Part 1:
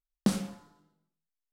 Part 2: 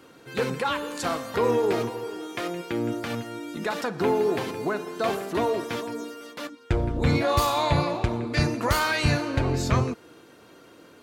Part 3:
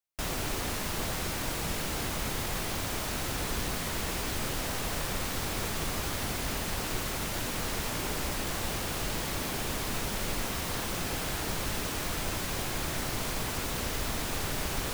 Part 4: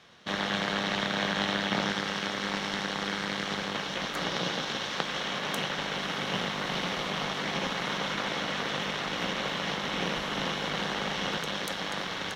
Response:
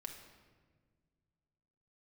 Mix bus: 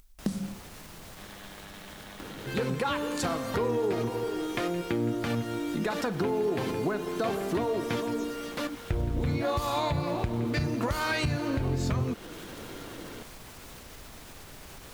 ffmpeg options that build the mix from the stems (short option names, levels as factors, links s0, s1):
-filter_complex "[0:a]bass=f=250:g=12,treble=f=4000:g=4,volume=0.841[s0];[1:a]lowshelf=f=320:g=7.5,adelay=2200,volume=1.33[s1];[2:a]alimiter=level_in=1.19:limit=0.0631:level=0:latency=1:release=103,volume=0.841,volume=0.447[s2];[3:a]adelay=900,volume=0.141,asplit=2[s3][s4];[s4]volume=0.596[s5];[s2][s3]amix=inputs=2:normalize=0,alimiter=level_in=4.22:limit=0.0631:level=0:latency=1:release=302,volume=0.237,volume=1[s6];[s0][s1]amix=inputs=2:normalize=0,acompressor=mode=upward:threshold=0.0126:ratio=2.5,alimiter=limit=0.224:level=0:latency=1:release=228,volume=1[s7];[4:a]atrim=start_sample=2205[s8];[s5][s8]afir=irnorm=-1:irlink=0[s9];[s6][s7][s9]amix=inputs=3:normalize=0,acompressor=threshold=0.0316:ratio=2"